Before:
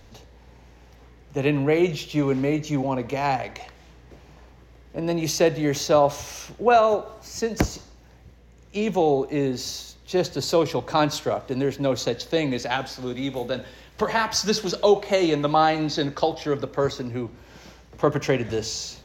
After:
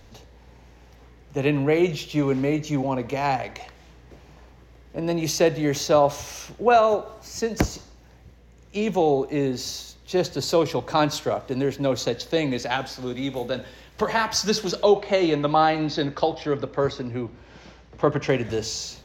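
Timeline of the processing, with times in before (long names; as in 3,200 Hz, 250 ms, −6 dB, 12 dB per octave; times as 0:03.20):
0:14.83–0:18.29: low-pass filter 4,900 Hz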